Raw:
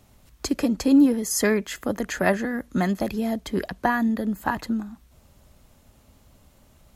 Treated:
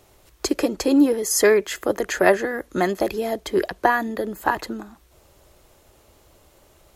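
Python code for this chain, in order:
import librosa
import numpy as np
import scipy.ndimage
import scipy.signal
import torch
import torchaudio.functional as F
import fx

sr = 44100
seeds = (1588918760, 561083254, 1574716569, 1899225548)

y = fx.low_shelf_res(x, sr, hz=290.0, db=-6.0, q=3.0)
y = F.gain(torch.from_numpy(y), 4.0).numpy()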